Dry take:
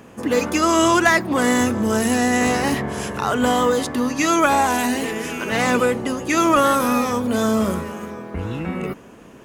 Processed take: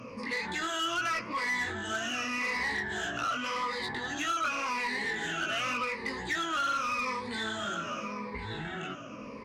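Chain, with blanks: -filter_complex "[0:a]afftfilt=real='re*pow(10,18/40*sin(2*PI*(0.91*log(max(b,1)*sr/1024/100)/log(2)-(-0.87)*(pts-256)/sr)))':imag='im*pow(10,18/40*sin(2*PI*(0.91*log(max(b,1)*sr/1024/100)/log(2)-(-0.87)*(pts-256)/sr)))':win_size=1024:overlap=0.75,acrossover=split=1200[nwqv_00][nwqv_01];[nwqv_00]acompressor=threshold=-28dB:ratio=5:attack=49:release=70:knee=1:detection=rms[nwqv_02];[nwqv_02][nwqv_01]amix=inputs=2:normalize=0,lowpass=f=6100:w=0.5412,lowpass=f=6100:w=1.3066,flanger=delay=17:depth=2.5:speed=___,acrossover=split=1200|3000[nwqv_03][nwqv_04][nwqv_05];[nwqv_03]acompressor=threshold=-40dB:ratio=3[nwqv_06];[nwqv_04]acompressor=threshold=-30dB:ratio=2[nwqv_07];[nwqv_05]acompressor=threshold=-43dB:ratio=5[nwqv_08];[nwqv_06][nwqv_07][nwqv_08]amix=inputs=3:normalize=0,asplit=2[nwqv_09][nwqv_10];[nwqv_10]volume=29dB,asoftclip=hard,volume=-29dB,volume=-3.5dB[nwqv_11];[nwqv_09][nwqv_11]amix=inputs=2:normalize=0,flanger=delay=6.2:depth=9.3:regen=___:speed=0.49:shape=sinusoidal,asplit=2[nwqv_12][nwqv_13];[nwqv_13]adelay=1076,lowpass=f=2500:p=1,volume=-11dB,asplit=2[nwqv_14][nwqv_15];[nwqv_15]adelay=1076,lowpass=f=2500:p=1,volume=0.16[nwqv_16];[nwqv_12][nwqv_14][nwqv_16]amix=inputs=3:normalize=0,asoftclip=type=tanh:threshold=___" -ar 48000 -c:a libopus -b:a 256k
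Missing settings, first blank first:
1.9, -85, -24dB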